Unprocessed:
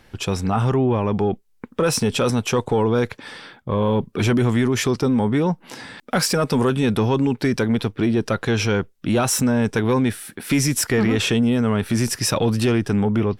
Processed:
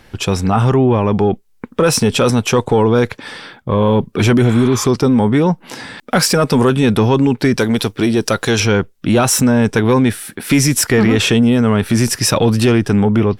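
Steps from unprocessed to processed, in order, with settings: 4.48–4.82 s: spectral replace 810–4500 Hz; 7.59–8.60 s: tone controls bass -4 dB, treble +11 dB; trim +6.5 dB

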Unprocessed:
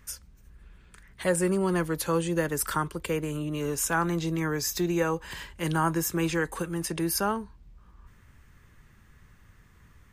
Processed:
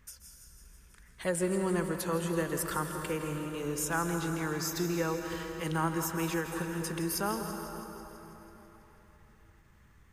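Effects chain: thinning echo 164 ms, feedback 68%, level -13.5 dB; plate-style reverb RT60 4 s, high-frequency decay 0.6×, pre-delay 115 ms, DRR 5.5 dB; endings held to a fixed fall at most 150 dB/s; trim -5.5 dB

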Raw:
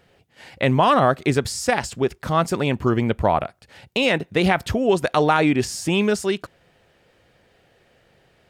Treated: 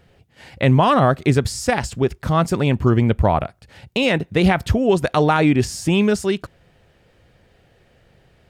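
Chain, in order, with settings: bass shelf 160 Hz +11.5 dB

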